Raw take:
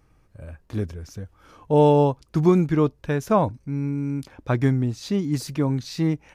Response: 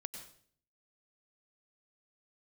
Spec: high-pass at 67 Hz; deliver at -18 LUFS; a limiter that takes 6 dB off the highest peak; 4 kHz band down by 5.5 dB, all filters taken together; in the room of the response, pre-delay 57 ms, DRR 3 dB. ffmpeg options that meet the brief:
-filter_complex "[0:a]highpass=67,equalizer=f=4000:t=o:g=-7,alimiter=limit=0.266:level=0:latency=1,asplit=2[s0][s1];[1:a]atrim=start_sample=2205,adelay=57[s2];[s1][s2]afir=irnorm=-1:irlink=0,volume=0.944[s3];[s0][s3]amix=inputs=2:normalize=0,volume=1.78"

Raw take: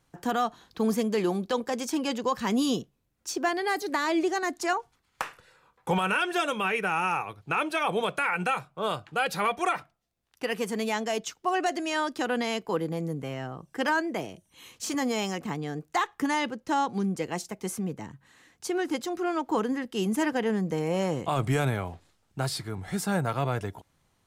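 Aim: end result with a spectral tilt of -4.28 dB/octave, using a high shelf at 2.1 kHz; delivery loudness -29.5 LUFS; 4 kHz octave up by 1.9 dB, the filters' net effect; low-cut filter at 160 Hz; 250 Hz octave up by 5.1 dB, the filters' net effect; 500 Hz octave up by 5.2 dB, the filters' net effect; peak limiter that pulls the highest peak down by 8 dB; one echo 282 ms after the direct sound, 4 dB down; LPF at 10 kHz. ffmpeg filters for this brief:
-af "highpass=160,lowpass=10000,equalizer=f=250:t=o:g=6,equalizer=f=500:t=o:g=5,highshelf=f=2100:g=-5.5,equalizer=f=4000:t=o:g=8,alimiter=limit=0.112:level=0:latency=1,aecho=1:1:282:0.631,volume=0.794"

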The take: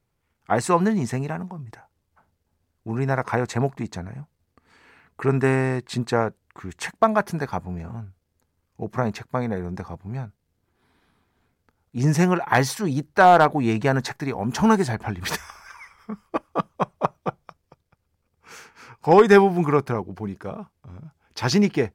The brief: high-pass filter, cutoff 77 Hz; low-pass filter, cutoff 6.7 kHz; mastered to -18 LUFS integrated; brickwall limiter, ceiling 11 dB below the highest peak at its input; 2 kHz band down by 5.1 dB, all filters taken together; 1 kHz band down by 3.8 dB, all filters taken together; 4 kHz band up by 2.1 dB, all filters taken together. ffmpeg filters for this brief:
-af "highpass=77,lowpass=6700,equalizer=f=1000:t=o:g=-4.5,equalizer=f=2000:t=o:g=-6,equalizer=f=4000:t=o:g=5,volume=3.16,alimiter=limit=0.531:level=0:latency=1"

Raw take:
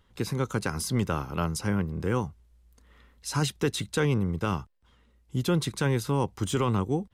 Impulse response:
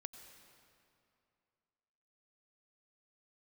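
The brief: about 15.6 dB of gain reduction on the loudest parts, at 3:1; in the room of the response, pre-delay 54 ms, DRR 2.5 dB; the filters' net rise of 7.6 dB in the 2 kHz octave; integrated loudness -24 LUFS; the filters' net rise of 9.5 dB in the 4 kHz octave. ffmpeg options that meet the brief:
-filter_complex "[0:a]equalizer=f=2000:t=o:g=8.5,equalizer=f=4000:t=o:g=9,acompressor=threshold=0.00794:ratio=3,asplit=2[s0][s1];[1:a]atrim=start_sample=2205,adelay=54[s2];[s1][s2]afir=irnorm=-1:irlink=0,volume=1.26[s3];[s0][s3]amix=inputs=2:normalize=0,volume=5.62"

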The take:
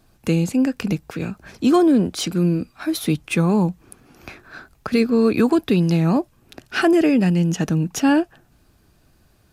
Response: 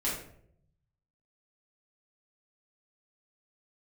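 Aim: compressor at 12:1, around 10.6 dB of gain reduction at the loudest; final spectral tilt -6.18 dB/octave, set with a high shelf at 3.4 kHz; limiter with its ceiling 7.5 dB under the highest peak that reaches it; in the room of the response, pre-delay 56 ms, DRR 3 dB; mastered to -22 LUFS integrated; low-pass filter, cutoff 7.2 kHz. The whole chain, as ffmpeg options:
-filter_complex "[0:a]lowpass=7200,highshelf=f=3400:g=-5,acompressor=threshold=0.0708:ratio=12,alimiter=limit=0.0841:level=0:latency=1,asplit=2[s0][s1];[1:a]atrim=start_sample=2205,adelay=56[s2];[s1][s2]afir=irnorm=-1:irlink=0,volume=0.335[s3];[s0][s3]amix=inputs=2:normalize=0,volume=2"

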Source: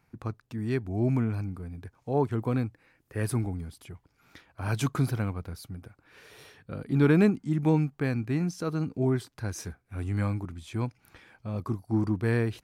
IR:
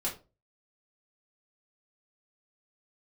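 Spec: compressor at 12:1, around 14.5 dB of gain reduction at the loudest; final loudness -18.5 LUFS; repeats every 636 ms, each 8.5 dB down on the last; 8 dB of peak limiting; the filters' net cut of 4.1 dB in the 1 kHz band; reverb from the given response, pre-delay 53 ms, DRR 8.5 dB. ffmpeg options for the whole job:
-filter_complex "[0:a]equalizer=f=1000:t=o:g=-5.5,acompressor=threshold=0.0251:ratio=12,alimiter=level_in=2.11:limit=0.0631:level=0:latency=1,volume=0.473,aecho=1:1:636|1272|1908|2544:0.376|0.143|0.0543|0.0206,asplit=2[s0][s1];[1:a]atrim=start_sample=2205,adelay=53[s2];[s1][s2]afir=irnorm=-1:irlink=0,volume=0.237[s3];[s0][s3]amix=inputs=2:normalize=0,volume=11.9"

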